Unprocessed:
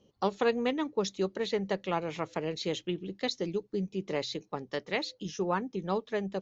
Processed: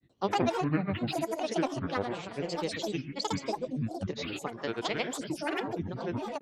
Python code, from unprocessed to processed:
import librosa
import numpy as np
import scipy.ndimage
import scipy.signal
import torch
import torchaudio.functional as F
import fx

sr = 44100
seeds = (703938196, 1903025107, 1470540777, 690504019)

y = fx.rev_gated(x, sr, seeds[0], gate_ms=200, shape='rising', drr_db=7.5)
y = fx.granulator(y, sr, seeds[1], grain_ms=100.0, per_s=20.0, spray_ms=100.0, spread_st=12)